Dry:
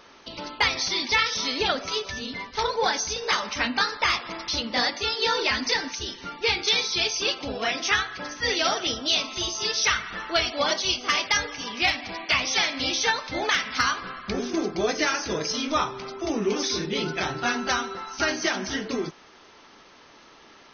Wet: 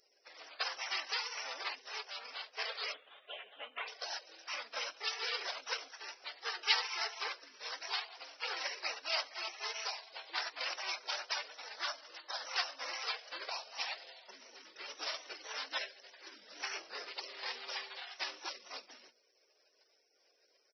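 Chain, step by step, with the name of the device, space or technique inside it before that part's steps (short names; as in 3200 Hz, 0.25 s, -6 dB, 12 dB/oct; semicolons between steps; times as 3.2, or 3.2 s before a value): notches 60/120/180/240 Hz; 2.92–3.88 steep low-pass 2600 Hz 72 dB/oct; musical greeting card (downsampling 11025 Hz; HPF 790 Hz 24 dB/oct; bell 3600 Hz +9 dB 0.6 oct); spectral gate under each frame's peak -20 dB weak; gain +1 dB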